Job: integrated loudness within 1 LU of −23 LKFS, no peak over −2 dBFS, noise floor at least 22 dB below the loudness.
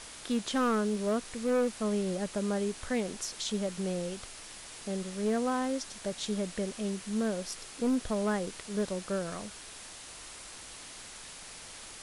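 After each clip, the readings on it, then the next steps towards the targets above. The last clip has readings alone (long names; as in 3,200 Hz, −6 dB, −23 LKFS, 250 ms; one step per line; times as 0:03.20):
share of clipped samples 1.1%; peaks flattened at −23.5 dBFS; background noise floor −47 dBFS; target noise floor −55 dBFS; integrated loudness −33.0 LKFS; sample peak −23.5 dBFS; target loudness −23.0 LKFS
→ clipped peaks rebuilt −23.5 dBFS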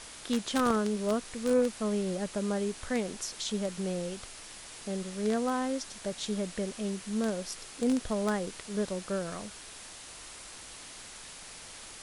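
share of clipped samples 0.0%; background noise floor −47 dBFS; target noise floor −55 dBFS
→ noise reduction from a noise print 8 dB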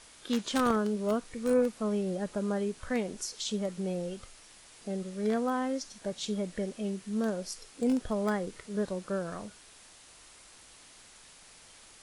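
background noise floor −55 dBFS; integrated loudness −32.5 LKFS; sample peak −14.5 dBFS; target loudness −23.0 LKFS
→ level +9.5 dB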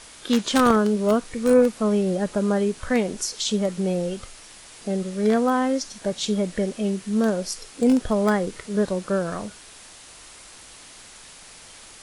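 integrated loudness −23.0 LKFS; sample peak −5.0 dBFS; background noise floor −46 dBFS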